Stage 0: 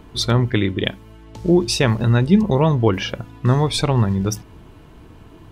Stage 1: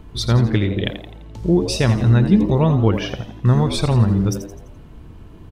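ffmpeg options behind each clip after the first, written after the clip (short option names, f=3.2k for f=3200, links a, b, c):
-filter_complex "[0:a]lowshelf=f=130:g=11,asplit=2[a][b];[b]asplit=5[c][d][e][f][g];[c]adelay=85,afreqshift=97,volume=-11dB[h];[d]adelay=170,afreqshift=194,volume=-17.9dB[i];[e]adelay=255,afreqshift=291,volume=-24.9dB[j];[f]adelay=340,afreqshift=388,volume=-31.8dB[k];[g]adelay=425,afreqshift=485,volume=-38.7dB[l];[h][i][j][k][l]amix=inputs=5:normalize=0[m];[a][m]amix=inputs=2:normalize=0,volume=-3.5dB"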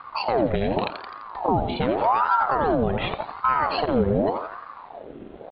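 -af "alimiter=limit=-13.5dB:level=0:latency=1:release=184,aresample=8000,aeval=exprs='sgn(val(0))*max(abs(val(0))-0.00299,0)':c=same,aresample=44100,aeval=exprs='val(0)*sin(2*PI*730*n/s+730*0.6/0.86*sin(2*PI*0.86*n/s))':c=same,volume=3.5dB"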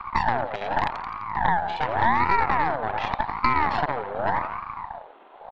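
-filter_complex "[0:a]highpass=f=900:t=q:w=3.6,acrossover=split=1200|3100[a][b][c];[a]acompressor=threshold=-20dB:ratio=4[d];[b]acompressor=threshold=-33dB:ratio=4[e];[c]acompressor=threshold=-47dB:ratio=4[f];[d][e][f]amix=inputs=3:normalize=0,aeval=exprs='0.398*(cos(1*acos(clip(val(0)/0.398,-1,1)))-cos(1*PI/2))+0.112*(cos(4*acos(clip(val(0)/0.398,-1,1)))-cos(4*PI/2))':c=same,volume=-2dB"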